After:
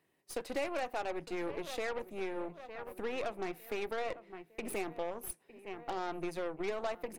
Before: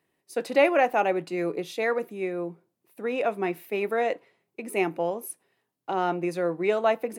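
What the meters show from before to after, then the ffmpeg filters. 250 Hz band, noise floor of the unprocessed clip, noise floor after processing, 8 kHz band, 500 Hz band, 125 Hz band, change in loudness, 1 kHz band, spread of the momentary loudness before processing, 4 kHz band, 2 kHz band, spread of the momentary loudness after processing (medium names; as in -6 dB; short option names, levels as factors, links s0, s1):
-11.5 dB, -80 dBFS, -72 dBFS, -4.5 dB, -12.5 dB, -12.5 dB, -12.5 dB, -12.5 dB, 14 LU, -6.5 dB, -11.5 dB, 8 LU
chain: -filter_complex "[0:a]asplit=2[s0][s1];[s1]adelay=906,lowpass=f=2700:p=1,volume=0.112,asplit=2[s2][s3];[s3]adelay=906,lowpass=f=2700:p=1,volume=0.42,asplit=2[s4][s5];[s5]adelay=906,lowpass=f=2700:p=1,volume=0.42[s6];[s0][s2][s4][s6]amix=inputs=4:normalize=0,acompressor=threshold=0.0141:ratio=3,aeval=exprs='0.0596*(cos(1*acos(clip(val(0)/0.0596,-1,1)))-cos(1*PI/2))+0.00668*(cos(8*acos(clip(val(0)/0.0596,-1,1)))-cos(8*PI/2))':c=same,volume=0.841"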